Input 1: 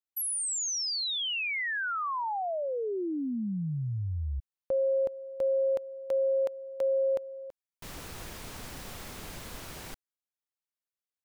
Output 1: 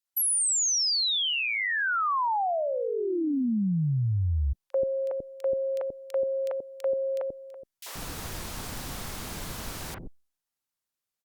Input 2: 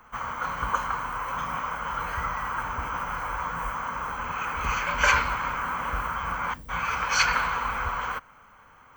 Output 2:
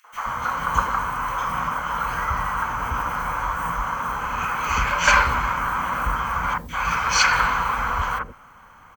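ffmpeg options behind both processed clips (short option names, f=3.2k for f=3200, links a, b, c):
-filter_complex "[0:a]acrossover=split=470|2300[a][b][c];[b]adelay=40[d];[a]adelay=130[e];[e][d][c]amix=inputs=3:normalize=0,volume=6.5dB" -ar 48000 -c:a libopus -b:a 128k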